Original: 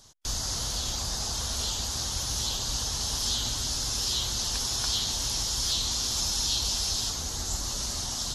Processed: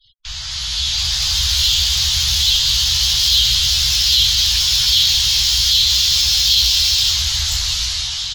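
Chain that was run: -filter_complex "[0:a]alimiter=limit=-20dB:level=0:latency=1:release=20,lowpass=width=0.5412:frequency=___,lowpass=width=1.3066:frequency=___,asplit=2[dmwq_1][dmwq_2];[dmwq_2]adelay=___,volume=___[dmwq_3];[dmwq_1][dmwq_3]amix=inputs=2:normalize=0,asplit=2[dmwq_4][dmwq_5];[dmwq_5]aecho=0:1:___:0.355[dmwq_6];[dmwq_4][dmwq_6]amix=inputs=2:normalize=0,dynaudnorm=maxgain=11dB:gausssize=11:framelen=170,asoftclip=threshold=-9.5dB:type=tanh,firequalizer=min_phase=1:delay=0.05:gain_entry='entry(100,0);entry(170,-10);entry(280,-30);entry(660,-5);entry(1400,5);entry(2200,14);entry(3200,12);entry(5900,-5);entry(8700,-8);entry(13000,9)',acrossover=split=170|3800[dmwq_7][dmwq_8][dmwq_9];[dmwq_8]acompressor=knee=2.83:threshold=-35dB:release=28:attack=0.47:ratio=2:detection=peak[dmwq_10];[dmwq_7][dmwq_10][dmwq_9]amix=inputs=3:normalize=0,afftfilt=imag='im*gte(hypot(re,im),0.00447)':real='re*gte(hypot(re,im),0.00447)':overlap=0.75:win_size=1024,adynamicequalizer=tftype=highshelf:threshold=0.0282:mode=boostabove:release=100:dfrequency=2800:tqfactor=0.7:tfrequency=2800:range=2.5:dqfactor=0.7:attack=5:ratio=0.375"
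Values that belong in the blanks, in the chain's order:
8.8k, 8.8k, 15, -4.5dB, 200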